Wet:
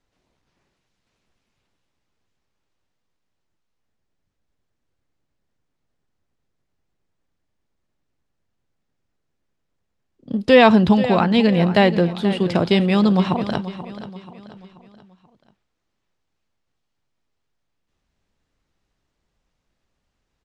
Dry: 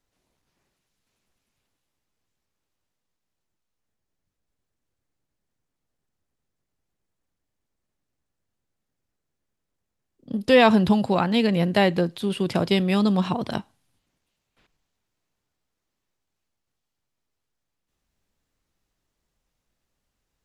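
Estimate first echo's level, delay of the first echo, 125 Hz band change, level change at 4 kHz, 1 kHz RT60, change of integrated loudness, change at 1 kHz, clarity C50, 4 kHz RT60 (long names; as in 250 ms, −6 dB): −13.5 dB, 483 ms, +5.0 dB, +3.0 dB, no reverb audible, +4.0 dB, +4.5 dB, no reverb audible, no reverb audible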